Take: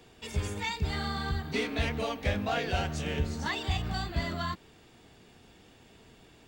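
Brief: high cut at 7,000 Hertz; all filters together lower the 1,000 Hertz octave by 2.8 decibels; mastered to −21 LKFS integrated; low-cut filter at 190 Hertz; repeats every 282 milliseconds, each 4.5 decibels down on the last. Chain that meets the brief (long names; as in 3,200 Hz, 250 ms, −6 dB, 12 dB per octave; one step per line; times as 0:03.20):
high-pass filter 190 Hz
low-pass filter 7,000 Hz
parametric band 1,000 Hz −4 dB
repeating echo 282 ms, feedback 60%, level −4.5 dB
level +12.5 dB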